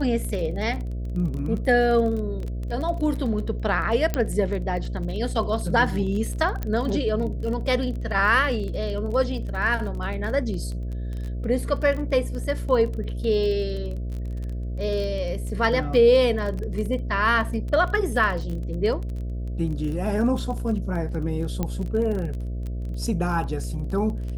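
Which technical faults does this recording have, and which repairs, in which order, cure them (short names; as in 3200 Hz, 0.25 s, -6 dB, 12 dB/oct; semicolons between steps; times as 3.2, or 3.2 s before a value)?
buzz 60 Hz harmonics 11 -29 dBFS
crackle 23/s -30 dBFS
4.14 pop -10 dBFS
6.63 pop -15 dBFS
21.63 pop -13 dBFS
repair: de-click; de-hum 60 Hz, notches 11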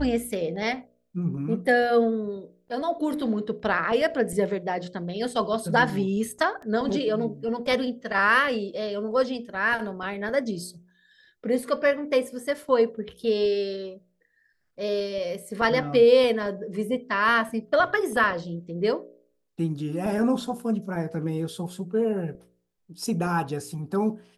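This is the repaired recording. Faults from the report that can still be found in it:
6.63 pop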